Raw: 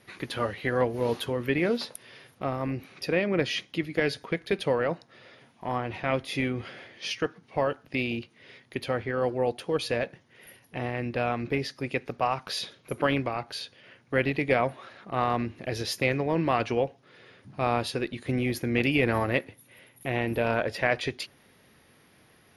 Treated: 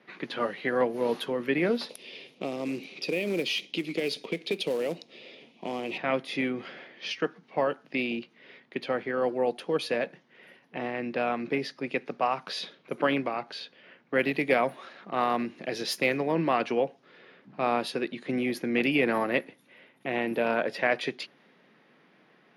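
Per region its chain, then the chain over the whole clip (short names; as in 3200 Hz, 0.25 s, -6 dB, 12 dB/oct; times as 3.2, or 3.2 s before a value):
1.89–5.98 EQ curve 110 Hz 0 dB, 430 Hz +7 dB, 1600 Hz -12 dB, 2400 Hz +10 dB + compressor 2.5:1, threshold -28 dBFS + short-mantissa float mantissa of 2-bit
14.19–16.32 median filter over 3 samples + high shelf 5700 Hz +9 dB
whole clip: steep high-pass 160 Hz 36 dB/oct; low-pass opened by the level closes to 2900 Hz, open at -23.5 dBFS; dynamic EQ 7300 Hz, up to -5 dB, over -52 dBFS, Q 1.1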